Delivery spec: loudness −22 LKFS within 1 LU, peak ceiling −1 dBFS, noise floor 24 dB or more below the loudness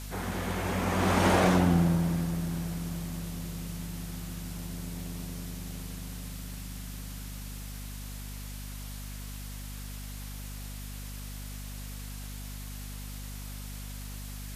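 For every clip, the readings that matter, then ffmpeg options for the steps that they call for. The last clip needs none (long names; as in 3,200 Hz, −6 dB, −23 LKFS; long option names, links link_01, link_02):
mains hum 50 Hz; hum harmonics up to 250 Hz; level of the hum −38 dBFS; background noise floor −40 dBFS; target noise floor −58 dBFS; integrated loudness −33.5 LKFS; sample peak −12.0 dBFS; target loudness −22.0 LKFS
→ -af "bandreject=frequency=50:width_type=h:width=6,bandreject=frequency=100:width_type=h:width=6,bandreject=frequency=150:width_type=h:width=6,bandreject=frequency=200:width_type=h:width=6,bandreject=frequency=250:width_type=h:width=6"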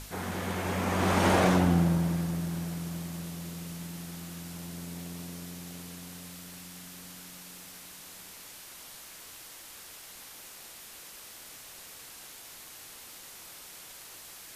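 mains hum none found; background noise floor −48 dBFS; target noise floor −55 dBFS
→ -af "afftdn=noise_reduction=7:noise_floor=-48"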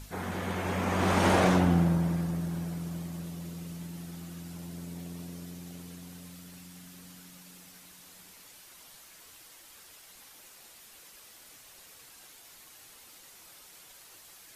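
background noise floor −54 dBFS; target noise floor −55 dBFS
→ -af "afftdn=noise_reduction=6:noise_floor=-54"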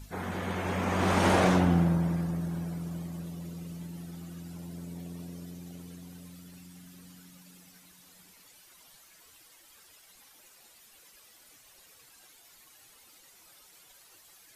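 background noise floor −58 dBFS; integrated loudness −30.5 LKFS; sample peak −11.5 dBFS; target loudness −22.0 LKFS
→ -af "volume=8.5dB"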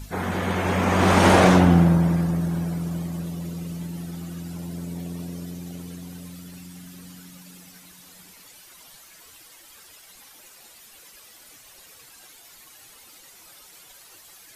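integrated loudness −22.0 LKFS; sample peak −3.0 dBFS; background noise floor −49 dBFS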